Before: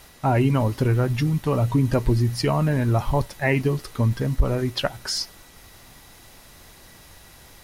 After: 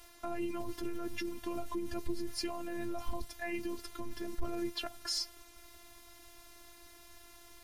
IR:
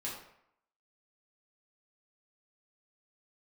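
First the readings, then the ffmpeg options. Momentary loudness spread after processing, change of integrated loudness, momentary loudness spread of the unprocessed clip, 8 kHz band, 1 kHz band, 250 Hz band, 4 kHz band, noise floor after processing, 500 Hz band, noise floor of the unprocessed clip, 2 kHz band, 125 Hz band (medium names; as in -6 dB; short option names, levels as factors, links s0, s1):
18 LU, -17.0 dB, 5 LU, -9.0 dB, -16.0 dB, -15.0 dB, -9.5 dB, -57 dBFS, -15.5 dB, -49 dBFS, -15.0 dB, -32.5 dB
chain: -filter_complex "[0:a]acrossover=split=280|3000[s0][s1][s2];[s1]acompressor=threshold=0.0398:ratio=6[s3];[s0][s3][s2]amix=inputs=3:normalize=0,alimiter=limit=0.126:level=0:latency=1:release=15,afftfilt=real='hypot(re,im)*cos(PI*b)':imag='0':win_size=512:overlap=0.75,volume=0.596"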